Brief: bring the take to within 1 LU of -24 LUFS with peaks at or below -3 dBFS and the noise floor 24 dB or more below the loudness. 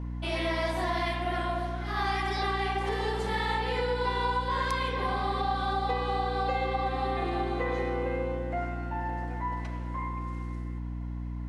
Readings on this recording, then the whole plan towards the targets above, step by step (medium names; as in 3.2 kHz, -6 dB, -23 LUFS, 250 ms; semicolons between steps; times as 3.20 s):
hum 60 Hz; highest harmonic 300 Hz; hum level -33 dBFS; loudness -31.0 LUFS; peak level -17.0 dBFS; loudness target -24.0 LUFS
-> hum notches 60/120/180/240/300 Hz; trim +7 dB